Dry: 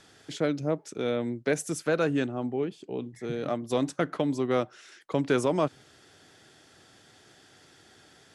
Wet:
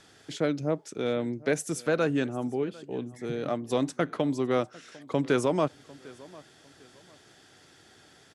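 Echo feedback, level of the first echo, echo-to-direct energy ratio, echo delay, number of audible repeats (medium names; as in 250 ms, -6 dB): 31%, -22.0 dB, -21.5 dB, 750 ms, 2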